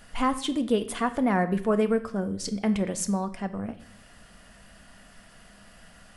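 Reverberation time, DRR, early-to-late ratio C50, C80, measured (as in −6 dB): 0.65 s, 9.0 dB, 14.0 dB, 17.0 dB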